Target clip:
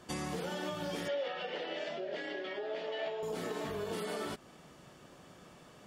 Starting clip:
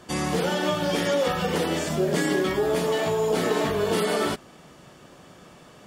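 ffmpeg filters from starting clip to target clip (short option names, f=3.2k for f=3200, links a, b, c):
-filter_complex "[0:a]acompressor=threshold=-28dB:ratio=6,asettb=1/sr,asplit=3[a][b][c];[a]atrim=end=1.084[d];[b]atrim=start=1.08:end=3.23,asetpts=PTS-STARTPTS,afade=t=in:d=0.004:c=qsin,afade=t=out:st=2.146:d=0.004:c=qsin,highpass=420,equalizer=f=610:t=q:w=4:g=7,equalizer=f=1.1k:t=q:w=4:g=-8,equalizer=f=1.9k:t=q:w=4:g=4,equalizer=f=2.9k:t=q:w=4:g=5,lowpass=f=4.4k:w=0.5412,lowpass=f=4.4k:w=1.3066[e];[c]atrim=start=3.226[f];[d][e]acrossfade=d=0.004:c1=hsin:c2=qsin[g];[g][f]acrossfade=d=0.004:c1=qsin:c2=hsin,volume=-7dB"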